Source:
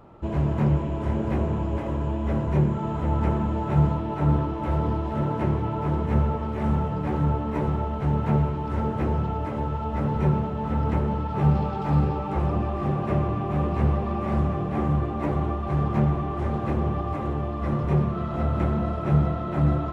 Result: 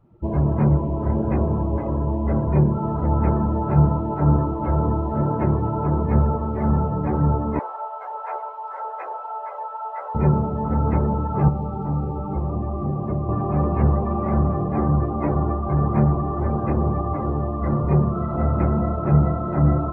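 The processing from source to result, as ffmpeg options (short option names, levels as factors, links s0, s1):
-filter_complex "[0:a]asettb=1/sr,asplit=3[s0][s1][s2];[s0]atrim=end=7.594[s3];[s1]atrim=start=7.59:end=10.15,asetpts=PTS-STARTPTS,afade=t=in:d=0.004:c=qsin,afade=t=out:st=2.556:d=0.004:c=qsin,highpass=f=630:w=0.5412,highpass=f=630:w=1.3066[s4];[s2]atrim=start=10.146[s5];[s3][s4]acrossfade=d=0.004:c1=hsin:c2=qsin[s6];[s6][s5]acrossfade=d=0.004:c1=qsin:c2=hsin,asettb=1/sr,asplit=3[s7][s8][s9];[s7]atrim=end=11.484[s10];[s8]atrim=start=11.48:end=13.29,asetpts=PTS-STARTPTS,afade=t=in:d=0.004:c=qsin,afade=t=out:st=1.806:d=0.004:c=qsin,acrossover=split=340|2400[s11][s12][s13];[s11]acompressor=threshold=0.0501:ratio=4[s14];[s12]acompressor=threshold=0.0158:ratio=4[s15];[s13]acompressor=threshold=0.00126:ratio=4[s16];[s14][s15][s16]amix=inputs=3:normalize=0[s17];[s9]atrim=start=13.286[s18];[s10][s17]acrossfade=d=0.004:c1=hsin:c2=qsin[s19];[s19][s18]acrossfade=d=0.004:c1=qsin:c2=hsin,afftdn=nr=20:nf=-38,volume=1.58"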